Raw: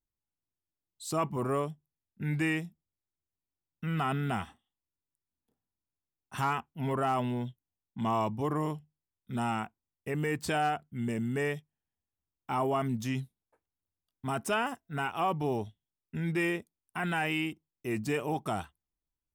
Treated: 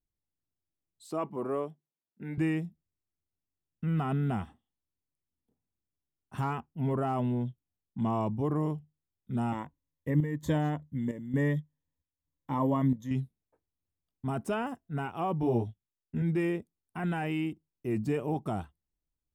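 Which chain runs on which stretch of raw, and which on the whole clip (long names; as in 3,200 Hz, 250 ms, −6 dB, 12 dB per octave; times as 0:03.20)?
0:01.07–0:02.38: high-pass filter 190 Hz + bass and treble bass −8 dB, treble −4 dB + notch filter 7,100 Hz, Q 18
0:09.52–0:13.11: EQ curve with evenly spaced ripples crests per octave 1.1, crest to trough 14 dB + square-wave tremolo 1.1 Hz, depth 60%, duty 75%
0:15.41–0:16.22: noise gate −52 dBFS, range −9 dB + double-tracking delay 17 ms −2.5 dB
whole clip: tilt shelving filter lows +7 dB, about 810 Hz; notch filter 5,900 Hz, Q 25; level −3 dB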